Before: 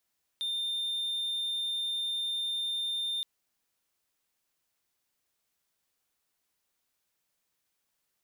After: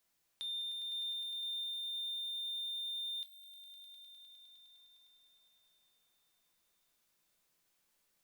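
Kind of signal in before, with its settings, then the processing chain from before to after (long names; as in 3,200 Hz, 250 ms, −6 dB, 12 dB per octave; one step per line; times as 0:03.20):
tone triangle 3,610 Hz −28 dBFS 2.82 s
downward compressor 1.5 to 1, threshold −55 dBFS
echo that builds up and dies away 102 ms, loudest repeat 5, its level −13 dB
rectangular room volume 210 cubic metres, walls furnished, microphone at 0.75 metres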